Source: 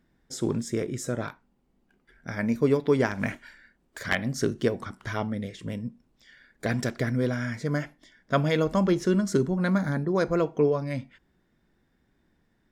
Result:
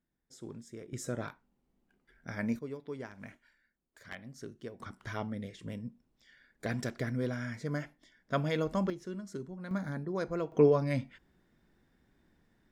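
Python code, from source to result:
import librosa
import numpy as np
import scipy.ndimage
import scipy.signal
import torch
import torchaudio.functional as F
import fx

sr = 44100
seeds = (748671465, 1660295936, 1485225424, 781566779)

y = fx.gain(x, sr, db=fx.steps((0.0, -18.0), (0.93, -6.5), (2.59, -19.0), (4.8, -7.5), (8.9, -17.5), (9.71, -10.0), (10.52, -0.5)))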